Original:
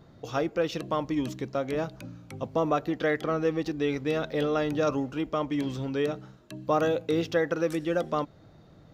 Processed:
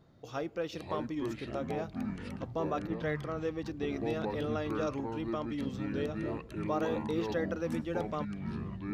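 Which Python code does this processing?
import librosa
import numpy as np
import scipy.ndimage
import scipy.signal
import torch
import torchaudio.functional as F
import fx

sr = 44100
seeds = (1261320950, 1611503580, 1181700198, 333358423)

y = fx.echo_pitch(x, sr, ms=404, semitones=-6, count=3, db_per_echo=-3.0)
y = fx.band_widen(y, sr, depth_pct=70, at=(2.87, 3.37))
y = F.gain(torch.from_numpy(y), -8.5).numpy()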